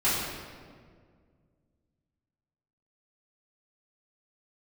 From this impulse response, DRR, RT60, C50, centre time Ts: −11.0 dB, 1.9 s, −0.5 dB, 100 ms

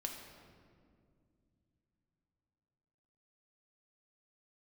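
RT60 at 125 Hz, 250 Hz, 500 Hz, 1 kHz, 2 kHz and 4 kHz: 4.7, 3.8, 2.7, 1.9, 1.6, 1.2 seconds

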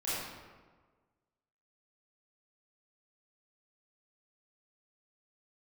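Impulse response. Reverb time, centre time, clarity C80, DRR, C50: 1.5 s, 109 ms, −0.5 dB, −11.5 dB, −4.5 dB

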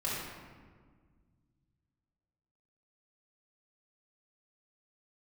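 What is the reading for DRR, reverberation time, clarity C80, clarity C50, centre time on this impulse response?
−8.0 dB, 1.6 s, 1.0 dB, −2.0 dB, 99 ms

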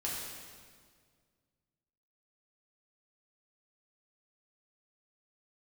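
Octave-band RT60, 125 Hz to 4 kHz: 2.5, 2.2, 2.0, 1.7, 1.6, 1.6 seconds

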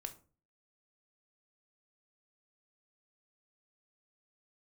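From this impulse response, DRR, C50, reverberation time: 7.0 dB, 14.5 dB, 0.40 s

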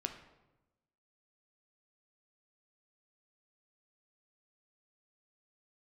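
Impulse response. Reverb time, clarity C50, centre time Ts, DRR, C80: 1.0 s, 9.0 dB, 17 ms, 5.0 dB, 11.5 dB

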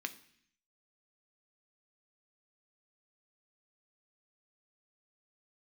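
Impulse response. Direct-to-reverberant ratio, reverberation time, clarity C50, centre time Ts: 8.0 dB, 0.60 s, 16.0 dB, 6 ms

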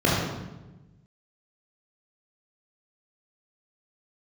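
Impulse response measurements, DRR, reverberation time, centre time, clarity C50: −6.0 dB, 1.1 s, 83 ms, −1.0 dB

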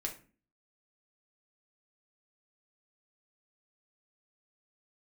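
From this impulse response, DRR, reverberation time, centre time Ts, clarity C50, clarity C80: 0.5 dB, 0.35 s, 14 ms, 11.0 dB, 17.0 dB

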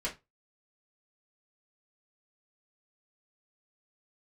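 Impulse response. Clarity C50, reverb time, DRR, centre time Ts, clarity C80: 14.0 dB, 0.20 s, −5.5 dB, 16 ms, 22.5 dB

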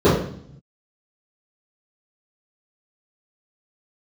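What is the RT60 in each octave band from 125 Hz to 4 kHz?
1.3, 0.90, 0.60, 0.60, 0.55, 0.65 seconds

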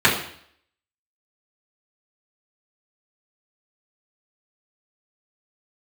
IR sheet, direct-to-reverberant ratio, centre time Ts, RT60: −8.5 dB, 28 ms, 0.60 s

